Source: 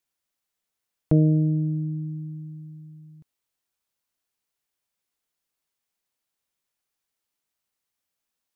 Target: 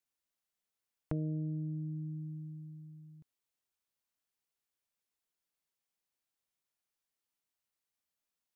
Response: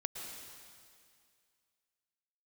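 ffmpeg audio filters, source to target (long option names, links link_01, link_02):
-af "acompressor=threshold=-31dB:ratio=2.5,volume=-7dB"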